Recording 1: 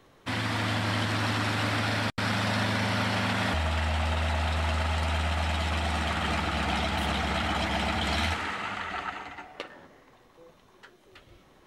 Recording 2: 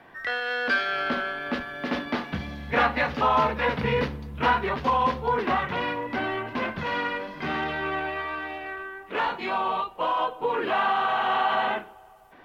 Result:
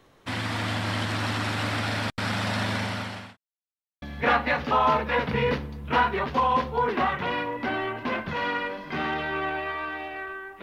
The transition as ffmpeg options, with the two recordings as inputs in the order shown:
-filter_complex "[0:a]apad=whole_dur=10.62,atrim=end=10.62,asplit=2[a][b];[a]atrim=end=3.37,asetpts=PTS-STARTPTS,afade=t=out:st=2.75:d=0.62[c];[b]atrim=start=3.37:end=4.02,asetpts=PTS-STARTPTS,volume=0[d];[1:a]atrim=start=2.52:end=9.12,asetpts=PTS-STARTPTS,afade=t=in:d=0.004:c=hsin[e];[c][d][e]concat=n=3:v=0:a=1"

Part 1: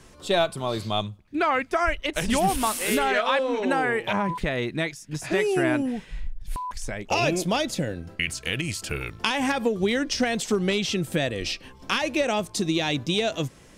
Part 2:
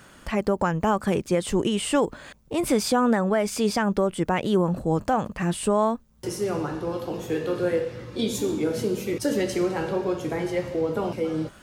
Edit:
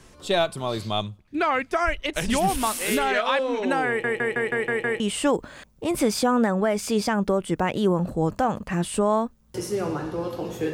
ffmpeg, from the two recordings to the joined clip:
-filter_complex "[0:a]apad=whole_dur=10.73,atrim=end=10.73,asplit=7[a][b][c][d][e][f][g];[a]atrim=end=4.042[h];[b]atrim=start=3.878:end=4.042[i];[c]atrim=start=3.878:end=4.042[j];[d]atrim=start=3.878:end=4.042[k];[e]atrim=start=3.878:end=4.042[l];[f]atrim=start=3.878:end=4.042[m];[g]atrim=start=3.878:end=4.042[n];[1:a]atrim=start=1.688:end=7.42[o];[h][i]acrossfade=d=0.004:c1=hsin:c2=hsin[p];[p][j]acrossfade=d=0.004:c1=hsin:c2=hsin[q];[q][k]acrossfade=d=0.004:c1=hsin:c2=hsin[r];[r][l]acrossfade=d=0.004:c1=hsin:c2=hsin[s];[s][m]acrossfade=d=0.004:c1=hsin:c2=hsin[t];[t][n]acrossfade=d=0.004:c1=hsin:c2=hsin[u];[u][o]acrossfade=d=0.004:c1=hsin:c2=hsin"

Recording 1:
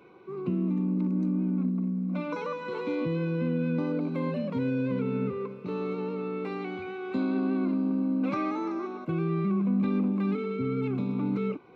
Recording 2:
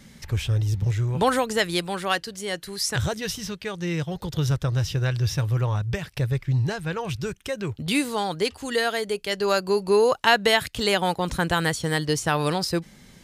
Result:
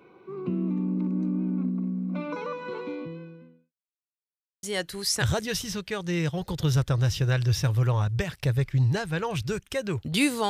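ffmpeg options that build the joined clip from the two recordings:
-filter_complex "[0:a]apad=whole_dur=10.49,atrim=end=10.49,asplit=2[a][b];[a]atrim=end=3.73,asetpts=PTS-STARTPTS,afade=t=out:st=2.7:d=1.03:c=qua[c];[b]atrim=start=3.73:end=4.63,asetpts=PTS-STARTPTS,volume=0[d];[1:a]atrim=start=2.37:end=8.23,asetpts=PTS-STARTPTS,afade=t=in:d=0.004:c=hsin[e];[c][d][e]concat=n=3:v=0:a=1"

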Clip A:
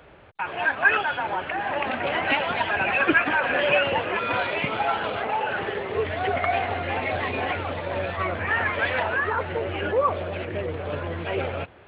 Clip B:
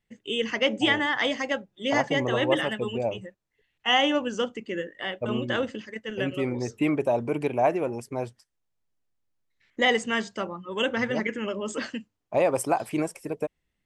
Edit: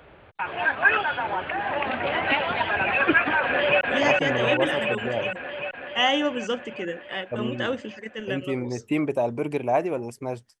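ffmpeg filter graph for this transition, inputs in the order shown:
-filter_complex "[0:a]apad=whole_dur=10.6,atrim=end=10.6,atrim=end=3.812[a];[1:a]atrim=start=1.708:end=8.5[b];[a][b]acrossfade=d=0.004:c1=hsin:c2=hsin,asplit=2[c][d];[d]afade=t=in:st=3.45:d=0.01,afade=t=out:st=3.81:d=0.01,aecho=0:1:380|760|1140|1520|1900|2280|2660|3040|3420|3800|4180|4560:0.841395|0.631046|0.473285|0.354964|0.266223|0.199667|0.14975|0.112313|0.0842345|0.0631759|0.0473819|0.0355364[e];[c][e]amix=inputs=2:normalize=0"

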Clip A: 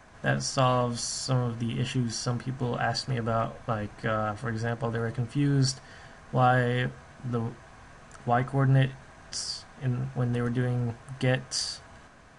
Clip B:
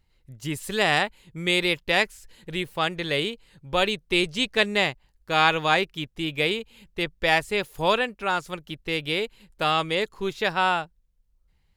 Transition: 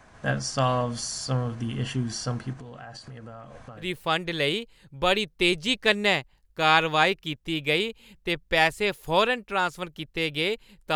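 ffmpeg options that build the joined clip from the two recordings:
-filter_complex "[0:a]asettb=1/sr,asplit=3[a][b][c];[a]atrim=end=2.534[d];[b]atrim=start=2.53:end=3.93,asetpts=PTS-STARTPTS,afade=t=in:d=0.004:c=qsin,afade=t=out:st=1.396:d=0.004:c=qsin,acompressor=threshold=-38dB:ratio=12:attack=3.2:release=140:knee=1:detection=peak[e];[c]atrim=start=3.926[f];[d][e]acrossfade=d=0.004:c1=hsin:c2=qsin[g];[g][f]acrossfade=d=0.004:c1=qsin:c2=hsin,apad=whole_dur=10.95,atrim=end=10.95,atrim=end=3.93,asetpts=PTS-STARTPTS[h];[1:a]atrim=start=2.44:end=9.66,asetpts=PTS-STARTPTS[i];[h][i]acrossfade=d=0.2:c1=tri:c2=tri"

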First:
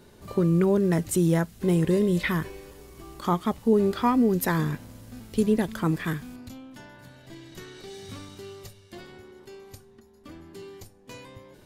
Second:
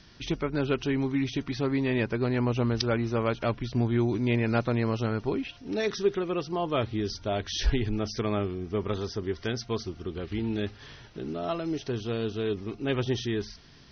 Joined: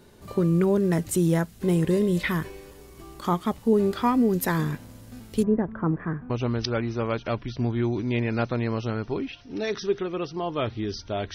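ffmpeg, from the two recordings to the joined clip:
-filter_complex "[0:a]asplit=3[a][b][c];[a]afade=t=out:st=5.42:d=0.02[d];[b]lowpass=f=1.5k:w=0.5412,lowpass=f=1.5k:w=1.3066,afade=t=in:st=5.42:d=0.02,afade=t=out:st=6.3:d=0.02[e];[c]afade=t=in:st=6.3:d=0.02[f];[d][e][f]amix=inputs=3:normalize=0,apad=whole_dur=11.34,atrim=end=11.34,atrim=end=6.302[g];[1:a]atrim=start=2.458:end=7.5[h];[g][h]acrossfade=d=0.004:c1=hsin:c2=hsin"

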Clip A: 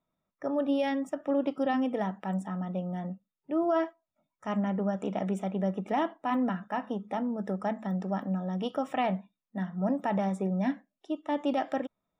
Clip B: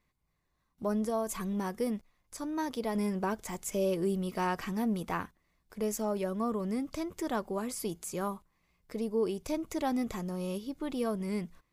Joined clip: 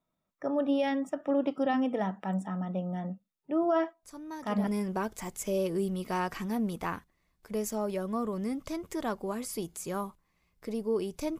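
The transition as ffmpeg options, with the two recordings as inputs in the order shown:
-filter_complex "[1:a]asplit=2[a][b];[0:a]apad=whole_dur=11.39,atrim=end=11.39,atrim=end=4.672[c];[b]atrim=start=2.938:end=9.66[d];[a]atrim=start=2.3:end=2.94,asetpts=PTS-STARTPTS,volume=-7.5dB,afade=t=in:d=0.004:c=hsin,afade=t=out:st=0.636:d=0.004:c=hsin,adelay=4030[e];[c][d]acrossfade=d=0.004:c1=hsin:c2=hsin[f];[f][e]amix=inputs=2:normalize=0"

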